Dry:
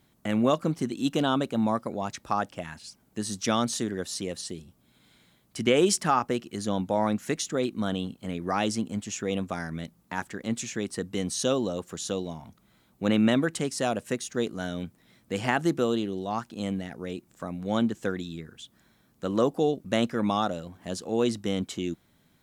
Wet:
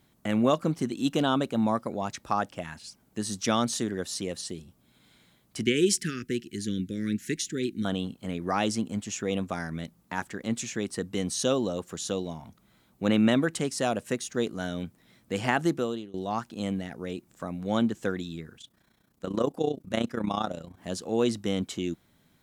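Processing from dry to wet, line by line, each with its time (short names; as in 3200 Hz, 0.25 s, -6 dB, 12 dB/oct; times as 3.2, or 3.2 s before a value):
5.63–7.85 Chebyshev band-stop 390–1700 Hz, order 3
15.65–16.14 fade out, to -20.5 dB
18.58–20.78 AM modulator 30 Hz, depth 65%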